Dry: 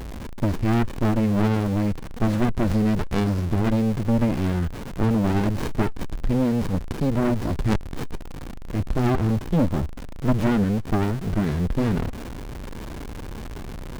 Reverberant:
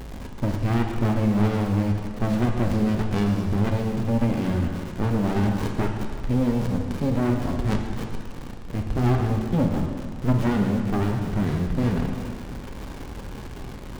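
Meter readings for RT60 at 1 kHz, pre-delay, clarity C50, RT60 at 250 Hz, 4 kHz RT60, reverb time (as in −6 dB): 2.0 s, 3 ms, 4.0 dB, 1.8 s, 1.8 s, 2.0 s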